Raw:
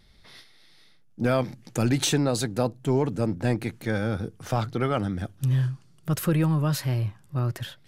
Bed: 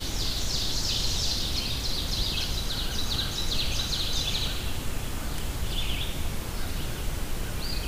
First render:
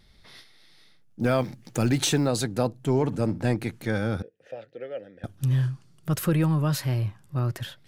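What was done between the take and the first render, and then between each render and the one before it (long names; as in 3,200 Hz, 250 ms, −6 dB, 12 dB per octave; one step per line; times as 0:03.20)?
0:01.21–0:02.30: one scale factor per block 7 bits
0:02.92–0:03.49: flutter between parallel walls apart 10.7 metres, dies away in 0.22 s
0:04.22–0:05.24: formant filter e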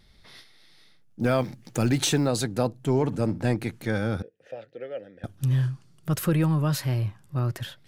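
no processing that can be heard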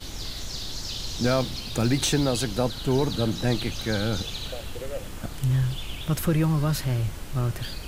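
mix in bed −5.5 dB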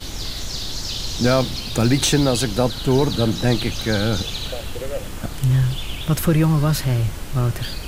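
level +6 dB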